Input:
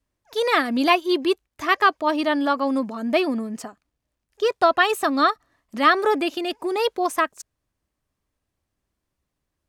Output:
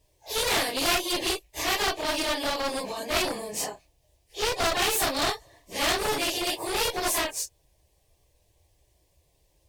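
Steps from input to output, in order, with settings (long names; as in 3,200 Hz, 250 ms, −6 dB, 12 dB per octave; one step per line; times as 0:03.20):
random phases in long frames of 100 ms
phaser with its sweep stopped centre 560 Hz, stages 4
asymmetric clip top −27 dBFS
every bin compressed towards the loudest bin 2 to 1
level +1.5 dB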